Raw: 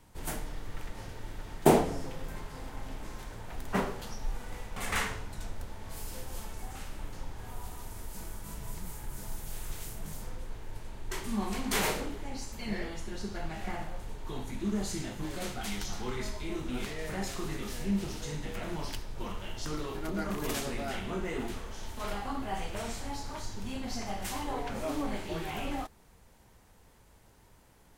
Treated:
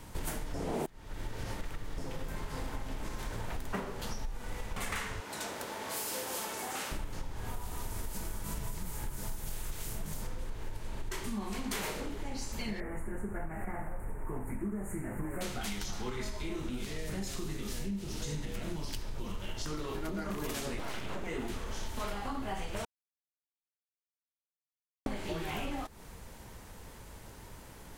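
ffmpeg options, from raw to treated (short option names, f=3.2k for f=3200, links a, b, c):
-filter_complex "[0:a]asettb=1/sr,asplit=3[a][b][c];[a]atrim=end=5.204[d];[b]atrim=start=5.2:end=6.92,asetpts=PTS-STARTPTS,afade=t=in:d=0.004:c=qsin,afade=t=out:st=1.716:d=0.004:c=qsin,highpass=330[e];[c]atrim=start=6.916[f];[d][e]acrossfade=d=0.004:c1=hsin:c2=qsin[g];[g][f]acrossfade=d=0.004:c1=qsin:c2=hsin,asettb=1/sr,asplit=3[h][i][j];[h]atrim=end=12.804[k];[i]atrim=start=12.8:end=15.41,asetpts=PTS-STARTPTS,afade=t=in:d=0.004:c=qsin,afade=t=out:st=2.606:d=0.004:c=qsin,asuperstop=centerf=4300:order=8:qfactor=0.69[l];[j]atrim=start=15.406[m];[k][l]acrossfade=d=0.004:c1=hsin:c2=qsin[n];[n][m]acrossfade=d=0.004:c1=qsin:c2=hsin,asettb=1/sr,asplit=3[o][p][q];[o]atrim=end=16.694[r];[p]atrim=start=16.69:end=19.49,asetpts=PTS-STARTPTS,afade=t=in:d=0.004:c=qsin,afade=t=out:st=2.796:d=0.004:c=qsin,acrossover=split=400|3000[s][t][u];[t]acompressor=threshold=-49dB:ratio=3:attack=3.2:release=140:knee=2.83:detection=peak[v];[s][v][u]amix=inputs=3:normalize=0[w];[q]atrim=start=19.486[x];[r][w]acrossfade=d=0.004:c1=hsin:c2=qsin[y];[y][x]acrossfade=d=0.004:c1=qsin:c2=hsin,asettb=1/sr,asplit=3[z][aa][ab];[z]atrim=end=20.794[ac];[aa]atrim=start=20.79:end=21.27,asetpts=PTS-STARTPTS,afade=t=in:d=0.004:c=qsin,afade=t=out:st=0.476:d=0.004:c=qsin,aeval=exprs='abs(val(0))':c=same[ad];[ab]atrim=start=21.266[ae];[ac][ad]acrossfade=d=0.004:c1=hsin:c2=qsin[af];[af][ae]acrossfade=d=0.004:c1=qsin:c2=hsin,asplit=5[ag][ah][ai][aj][ak];[ag]atrim=end=0.542[al];[ah]atrim=start=0.538:end=1.982,asetpts=PTS-STARTPTS,areverse[am];[ai]atrim=start=1.978:end=22.85,asetpts=PTS-STARTPTS,afade=t=out:st=20.868:d=0.004:c=hsin[an];[aj]atrim=start=22.85:end=25.06,asetpts=PTS-STARTPTS,volume=0[ao];[ak]atrim=start=25.06,asetpts=PTS-STARTPTS,afade=t=in:d=0.004:c=hsin[ap];[al][am]acrossfade=d=0.004:c1=hsin:c2=hsin[aq];[an][ao][ap]concat=n=3:v=0:a=1[ar];[aq][ar]acrossfade=d=0.004:c1=hsin:c2=hsin,equalizer=f=750:w=7.1:g=-3,acompressor=threshold=-43dB:ratio=16,volume=10.5dB"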